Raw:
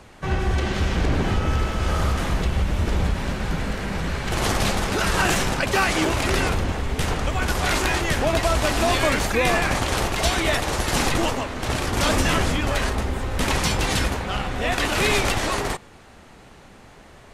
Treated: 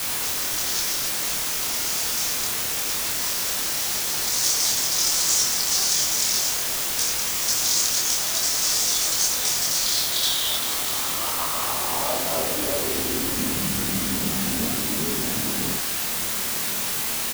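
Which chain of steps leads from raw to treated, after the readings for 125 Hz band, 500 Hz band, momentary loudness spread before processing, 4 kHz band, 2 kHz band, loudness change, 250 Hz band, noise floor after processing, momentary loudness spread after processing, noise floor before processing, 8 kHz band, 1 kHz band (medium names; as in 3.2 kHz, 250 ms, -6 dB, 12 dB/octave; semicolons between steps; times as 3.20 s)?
-13.5 dB, -8.5 dB, 7 LU, +4.0 dB, -6.5 dB, +1.5 dB, -6.0 dB, -26 dBFS, 4 LU, -47 dBFS, +10.5 dB, -7.5 dB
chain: elliptic band-stop 1.3–3.2 kHz; tone controls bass +1 dB, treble +14 dB; compression 3:1, threshold -25 dBFS, peak gain reduction 10 dB; band-pass sweep 5.7 kHz -> 220 Hz, 9.67–13.59 s; word length cut 6-bit, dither triangular; doubling 26 ms -3 dB; trim +8 dB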